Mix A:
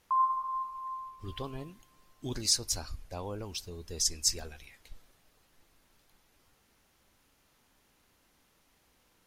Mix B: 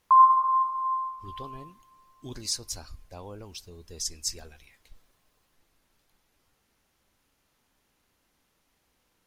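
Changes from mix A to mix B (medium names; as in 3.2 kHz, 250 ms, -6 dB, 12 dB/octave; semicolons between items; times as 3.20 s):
speech -3.5 dB; background +11.0 dB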